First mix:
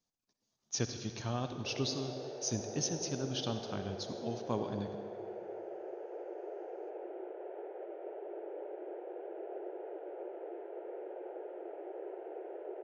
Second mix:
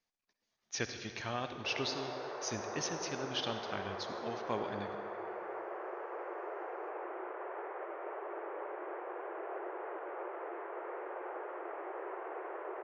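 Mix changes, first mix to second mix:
background: remove phaser with its sweep stopped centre 460 Hz, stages 4
master: add octave-band graphic EQ 125/250/2,000/8,000 Hz −8/−4/+11/−8 dB

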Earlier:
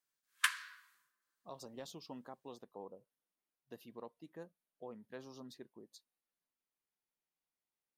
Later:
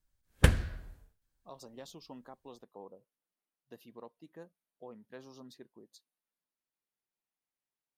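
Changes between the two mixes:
background: remove Chebyshev high-pass filter 1,000 Hz, order 8
reverb: off

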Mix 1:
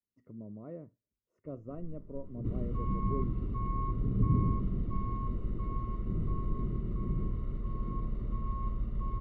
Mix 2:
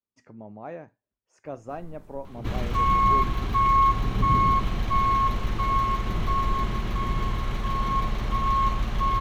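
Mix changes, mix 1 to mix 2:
second sound +7.0 dB
master: remove moving average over 54 samples

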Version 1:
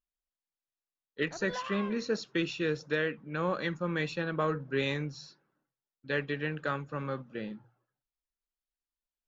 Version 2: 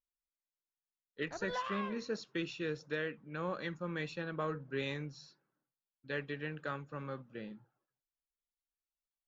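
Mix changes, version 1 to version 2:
speech −7.0 dB
master: remove mains-hum notches 60/120 Hz

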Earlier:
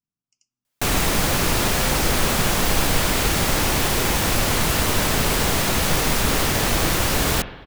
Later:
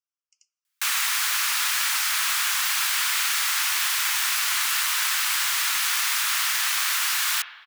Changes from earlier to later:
speech +4.0 dB
master: add inverse Chebyshev high-pass filter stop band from 460 Hz, stop band 50 dB

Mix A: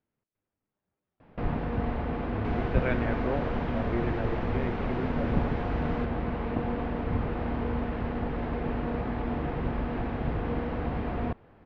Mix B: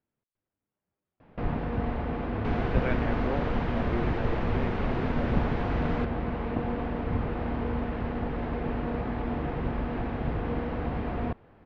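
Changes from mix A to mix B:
speech: send −11.0 dB
second sound +4.5 dB

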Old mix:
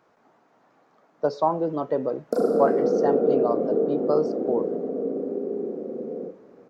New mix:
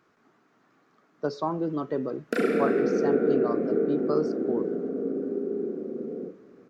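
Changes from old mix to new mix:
background: remove Chebyshev band-stop filter 1,200–4,600 Hz, order 3
master: add flat-topped bell 690 Hz −9 dB 1.2 octaves

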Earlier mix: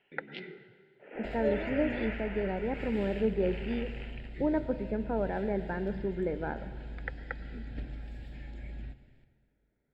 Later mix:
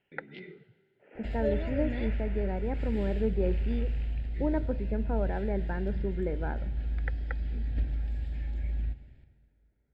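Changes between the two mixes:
speech: send −10.5 dB
first sound −7.5 dB
master: add parametric band 65 Hz +13.5 dB 1.2 octaves

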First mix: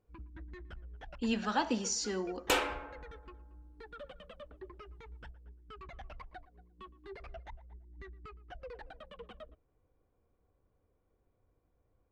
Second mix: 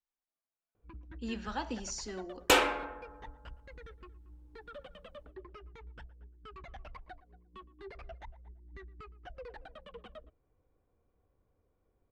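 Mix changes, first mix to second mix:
speech −6.0 dB
first sound: entry +0.75 s
second sound +5.5 dB

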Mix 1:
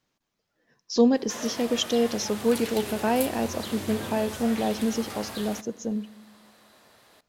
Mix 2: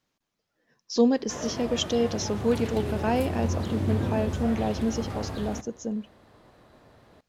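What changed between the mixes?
speech: send off
background: add spectral tilt −4 dB per octave

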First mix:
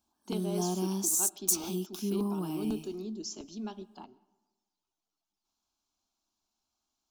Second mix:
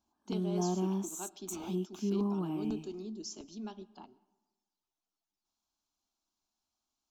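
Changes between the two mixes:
speech −3.5 dB
background: add moving average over 9 samples

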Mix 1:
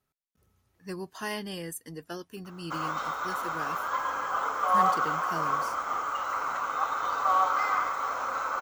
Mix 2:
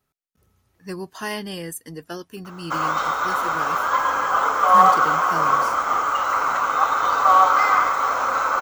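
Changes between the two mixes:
speech +5.5 dB
background +10.0 dB

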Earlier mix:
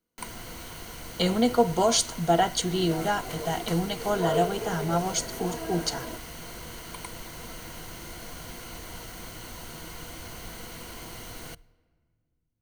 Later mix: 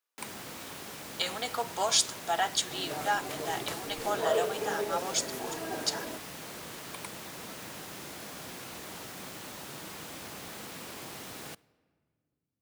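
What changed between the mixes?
speech: add high-pass filter 960 Hz 12 dB per octave
first sound: add high-pass filter 150 Hz 12 dB per octave
master: remove EQ curve with evenly spaced ripples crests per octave 1.9, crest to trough 8 dB

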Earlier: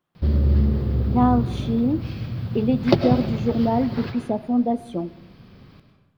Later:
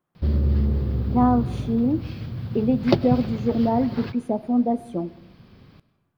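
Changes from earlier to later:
speech: add parametric band 3,600 Hz −9 dB 1.3 octaves
background: send −11.5 dB

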